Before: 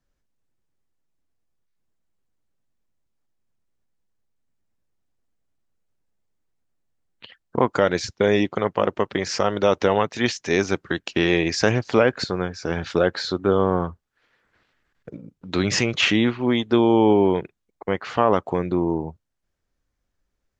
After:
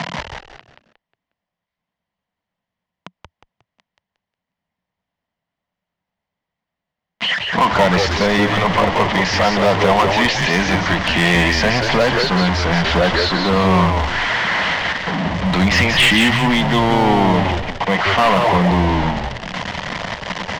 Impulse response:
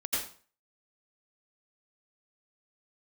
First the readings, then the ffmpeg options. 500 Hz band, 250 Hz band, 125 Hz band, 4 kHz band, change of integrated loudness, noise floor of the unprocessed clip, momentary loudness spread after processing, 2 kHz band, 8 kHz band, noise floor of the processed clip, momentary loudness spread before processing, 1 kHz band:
+2.5 dB, +4.5 dB, +9.5 dB, +10.5 dB, +6.0 dB, -77 dBFS, 10 LU, +11.5 dB, no reading, -84 dBFS, 9 LU, +10.5 dB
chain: -filter_complex "[0:a]aeval=exprs='val(0)+0.5*0.112*sgn(val(0))':c=same,highpass=f=130:w=0.5412,highpass=f=130:w=1.3066,equalizer=f=180:t=q:w=4:g=9,equalizer=f=380:t=q:w=4:g=-9,equalizer=f=690:t=q:w=4:g=9,equalizer=f=1000:t=q:w=4:g=10,equalizer=f=2000:t=q:w=4:g=10,equalizer=f=3100:t=q:w=4:g=7,lowpass=f=5300:w=0.5412,lowpass=f=5300:w=1.3066,volume=2.82,asoftclip=hard,volume=0.355,asplit=5[s0][s1][s2][s3][s4];[s1]adelay=180,afreqshift=-98,volume=0.596[s5];[s2]adelay=360,afreqshift=-196,volume=0.202[s6];[s3]adelay=540,afreqshift=-294,volume=0.0692[s7];[s4]adelay=720,afreqshift=-392,volume=0.0234[s8];[s0][s5][s6][s7][s8]amix=inputs=5:normalize=0"

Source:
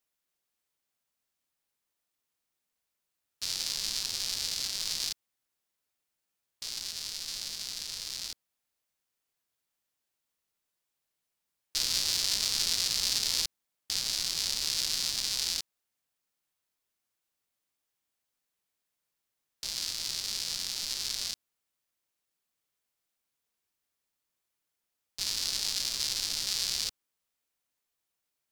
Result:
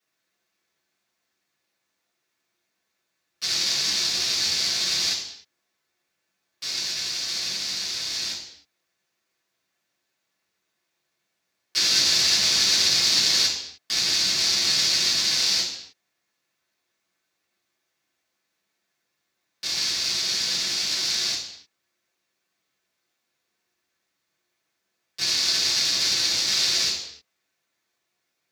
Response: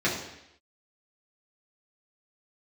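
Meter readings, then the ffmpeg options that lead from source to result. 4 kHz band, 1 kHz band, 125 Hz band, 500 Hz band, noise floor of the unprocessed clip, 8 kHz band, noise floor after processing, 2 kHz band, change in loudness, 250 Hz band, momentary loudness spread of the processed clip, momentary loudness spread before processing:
+10.0 dB, +10.5 dB, +8.0 dB, +12.0 dB, -85 dBFS, +7.5 dB, -78 dBFS, +12.5 dB, +9.5 dB, +12.0 dB, 12 LU, 10 LU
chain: -filter_complex "[0:a]lowshelf=f=290:g=-9[s0];[1:a]atrim=start_sample=2205,afade=t=out:st=0.37:d=0.01,atrim=end_sample=16758[s1];[s0][s1]afir=irnorm=-1:irlink=0"

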